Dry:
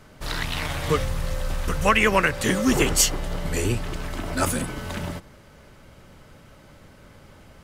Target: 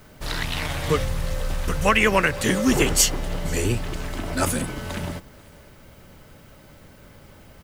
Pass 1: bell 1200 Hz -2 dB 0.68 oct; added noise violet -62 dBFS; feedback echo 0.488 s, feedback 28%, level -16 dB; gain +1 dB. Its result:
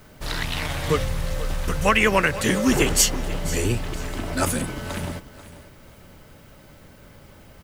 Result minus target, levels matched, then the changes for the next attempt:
echo-to-direct +8.5 dB
change: feedback echo 0.488 s, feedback 28%, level -24.5 dB

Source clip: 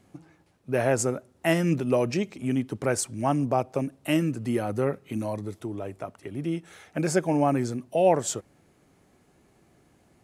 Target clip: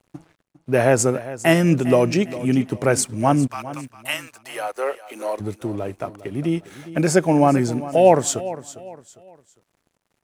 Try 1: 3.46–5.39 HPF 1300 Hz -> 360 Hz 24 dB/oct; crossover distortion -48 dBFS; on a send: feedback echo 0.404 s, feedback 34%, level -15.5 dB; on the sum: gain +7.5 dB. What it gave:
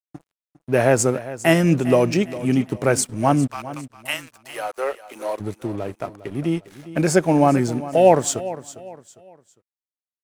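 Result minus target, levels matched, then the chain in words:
crossover distortion: distortion +7 dB
3.46–5.39 HPF 1300 Hz -> 360 Hz 24 dB/oct; crossover distortion -56 dBFS; on a send: feedback echo 0.404 s, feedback 34%, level -15.5 dB; on the sum: gain +7.5 dB

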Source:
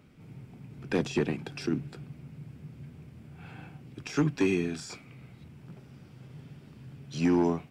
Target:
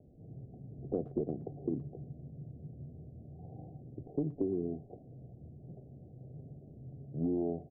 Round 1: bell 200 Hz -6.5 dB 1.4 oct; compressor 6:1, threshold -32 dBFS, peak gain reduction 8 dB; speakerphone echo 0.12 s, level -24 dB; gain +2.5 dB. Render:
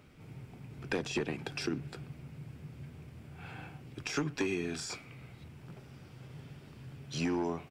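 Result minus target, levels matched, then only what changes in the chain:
1000 Hz band +8.0 dB
add first: steep low-pass 740 Hz 96 dB/oct

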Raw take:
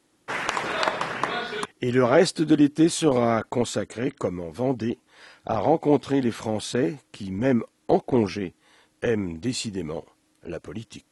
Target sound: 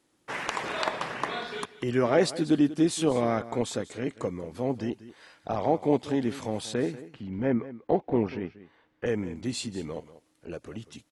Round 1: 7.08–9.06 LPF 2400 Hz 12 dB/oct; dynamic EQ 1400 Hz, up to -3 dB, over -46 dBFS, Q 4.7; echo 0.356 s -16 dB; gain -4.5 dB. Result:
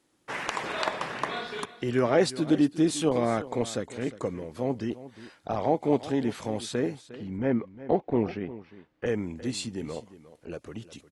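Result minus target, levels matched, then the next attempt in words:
echo 0.166 s late
7.08–9.06 LPF 2400 Hz 12 dB/oct; dynamic EQ 1400 Hz, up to -3 dB, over -46 dBFS, Q 4.7; echo 0.19 s -16 dB; gain -4.5 dB

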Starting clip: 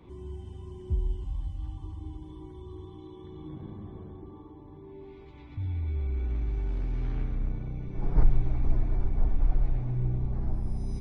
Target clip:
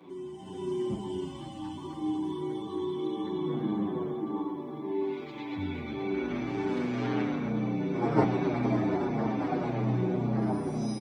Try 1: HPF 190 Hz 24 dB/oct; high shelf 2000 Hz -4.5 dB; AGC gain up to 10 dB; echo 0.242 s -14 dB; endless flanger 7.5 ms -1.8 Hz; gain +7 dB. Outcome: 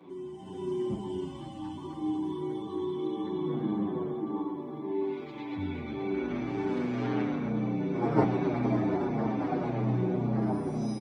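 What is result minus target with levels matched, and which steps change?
4000 Hz band -3.0 dB
remove: high shelf 2000 Hz -4.5 dB

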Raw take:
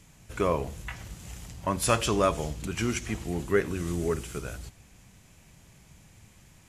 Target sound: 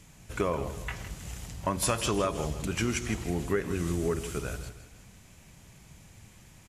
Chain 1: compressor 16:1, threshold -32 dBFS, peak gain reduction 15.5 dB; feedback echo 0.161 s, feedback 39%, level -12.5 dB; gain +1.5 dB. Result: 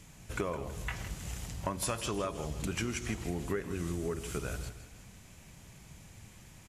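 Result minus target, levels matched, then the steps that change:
compressor: peak gain reduction +6.5 dB
change: compressor 16:1, threshold -25 dBFS, peak gain reduction 9 dB

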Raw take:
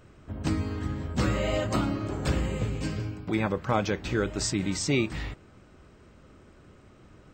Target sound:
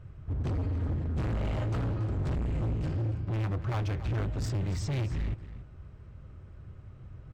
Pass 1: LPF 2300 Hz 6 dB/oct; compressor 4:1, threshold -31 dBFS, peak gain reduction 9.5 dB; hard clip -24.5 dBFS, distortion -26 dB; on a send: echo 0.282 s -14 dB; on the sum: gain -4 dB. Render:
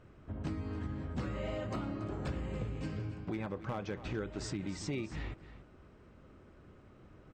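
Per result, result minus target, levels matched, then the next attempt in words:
compressor: peak gain reduction +9.5 dB; 125 Hz band -3.5 dB
LPF 2300 Hz 6 dB/oct; hard clip -24.5 dBFS, distortion -11 dB; on a send: echo 0.282 s -14 dB; on the sum: gain -4 dB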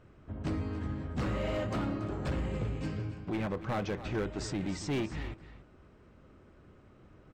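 125 Hz band -4.0 dB
LPF 2300 Hz 6 dB/oct; resonant low shelf 170 Hz +12 dB, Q 1.5; hard clip -24.5 dBFS, distortion -5 dB; on a send: echo 0.282 s -14 dB; on the sum: gain -4 dB

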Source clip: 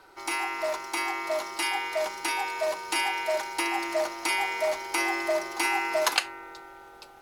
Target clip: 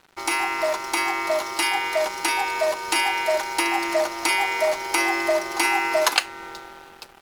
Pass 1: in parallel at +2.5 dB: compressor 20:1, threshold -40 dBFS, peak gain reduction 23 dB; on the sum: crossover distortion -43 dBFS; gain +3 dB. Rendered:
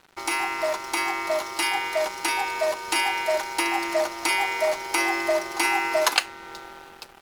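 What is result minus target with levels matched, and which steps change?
compressor: peak gain reduction +7 dB
change: compressor 20:1, threshold -32.5 dBFS, peak gain reduction 16 dB

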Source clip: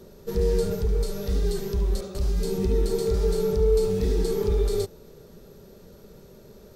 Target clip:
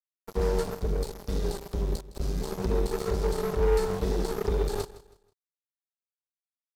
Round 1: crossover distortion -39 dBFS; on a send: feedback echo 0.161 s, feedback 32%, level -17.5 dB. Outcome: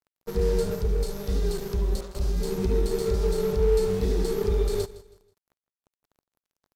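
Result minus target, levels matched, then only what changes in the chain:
crossover distortion: distortion -11 dB
change: crossover distortion -27.5 dBFS

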